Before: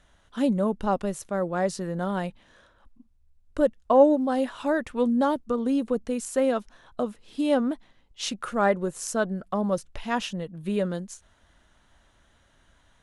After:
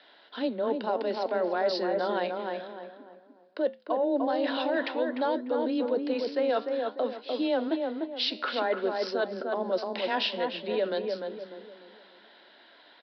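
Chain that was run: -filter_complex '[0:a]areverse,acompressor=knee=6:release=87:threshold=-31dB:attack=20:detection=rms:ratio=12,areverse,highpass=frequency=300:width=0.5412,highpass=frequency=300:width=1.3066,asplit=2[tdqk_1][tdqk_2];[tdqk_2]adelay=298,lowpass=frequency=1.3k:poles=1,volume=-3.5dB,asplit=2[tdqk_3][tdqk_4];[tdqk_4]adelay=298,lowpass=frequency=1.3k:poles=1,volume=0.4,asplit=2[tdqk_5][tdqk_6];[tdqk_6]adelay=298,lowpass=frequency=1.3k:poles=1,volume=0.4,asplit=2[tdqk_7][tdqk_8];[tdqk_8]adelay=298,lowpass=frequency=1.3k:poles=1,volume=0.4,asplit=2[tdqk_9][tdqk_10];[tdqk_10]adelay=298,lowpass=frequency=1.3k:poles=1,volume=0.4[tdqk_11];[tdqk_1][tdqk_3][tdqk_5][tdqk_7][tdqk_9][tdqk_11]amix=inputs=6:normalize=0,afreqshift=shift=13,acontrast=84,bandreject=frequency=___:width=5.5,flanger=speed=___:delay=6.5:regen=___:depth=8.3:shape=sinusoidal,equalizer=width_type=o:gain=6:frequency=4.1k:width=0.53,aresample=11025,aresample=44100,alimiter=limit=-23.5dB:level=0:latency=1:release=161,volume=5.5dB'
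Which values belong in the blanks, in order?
1.2k, 0.54, -83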